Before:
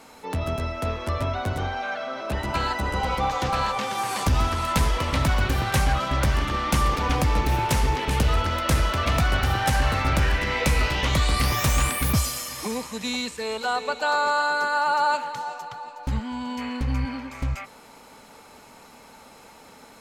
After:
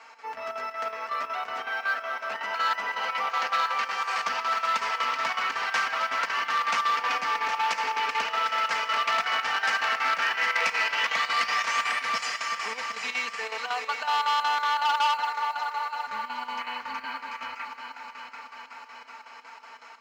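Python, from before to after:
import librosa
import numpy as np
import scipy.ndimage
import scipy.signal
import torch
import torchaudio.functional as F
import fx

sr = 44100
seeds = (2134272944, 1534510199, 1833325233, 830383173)

y = scipy.signal.sosfilt(scipy.signal.butter(4, 4900.0, 'lowpass', fs=sr, output='sos'), x)
y = fx.peak_eq(y, sr, hz=3700.0, db=-12.0, octaves=0.53)
y = fx.echo_heads(y, sr, ms=382, heads='first and second', feedback_pct=67, wet_db=-12.0)
y = fx.chopper(y, sr, hz=5.4, depth_pct=65, duty_pct=75)
y = scipy.signal.sosfilt(scipy.signal.butter(2, 1200.0, 'highpass', fs=sr, output='sos'), y)
y = y + 0.65 * np.pad(y, (int(4.4 * sr / 1000.0), 0))[:len(y)]
y = fx.mod_noise(y, sr, seeds[0], snr_db=35)
y = fx.transformer_sat(y, sr, knee_hz=2400.0)
y = y * 10.0 ** (4.0 / 20.0)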